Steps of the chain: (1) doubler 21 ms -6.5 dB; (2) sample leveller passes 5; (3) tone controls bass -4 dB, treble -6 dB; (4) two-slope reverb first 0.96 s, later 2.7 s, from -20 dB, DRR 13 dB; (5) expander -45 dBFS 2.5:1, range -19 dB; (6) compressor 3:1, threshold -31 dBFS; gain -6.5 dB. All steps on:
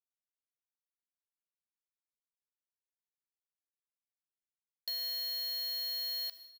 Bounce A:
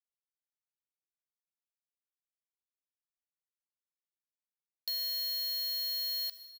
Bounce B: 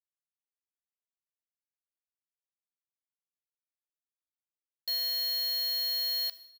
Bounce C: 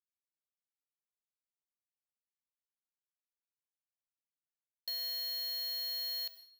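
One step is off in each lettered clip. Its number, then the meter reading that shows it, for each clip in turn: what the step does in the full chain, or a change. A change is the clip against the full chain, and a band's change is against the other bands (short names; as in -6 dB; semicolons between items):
3, crest factor change -2.0 dB; 6, mean gain reduction 5.0 dB; 1, crest factor change -2.0 dB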